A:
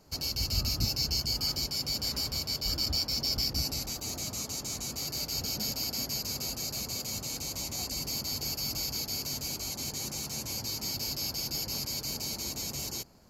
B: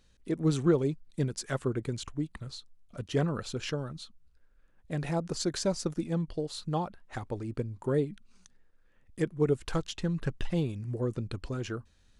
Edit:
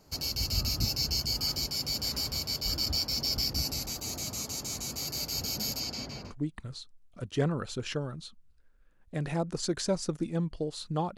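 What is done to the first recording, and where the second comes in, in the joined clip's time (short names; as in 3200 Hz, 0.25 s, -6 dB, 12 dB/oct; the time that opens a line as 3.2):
A
5.79–6.35 LPF 8100 Hz -> 1500 Hz
6.31 switch to B from 2.08 s, crossfade 0.08 s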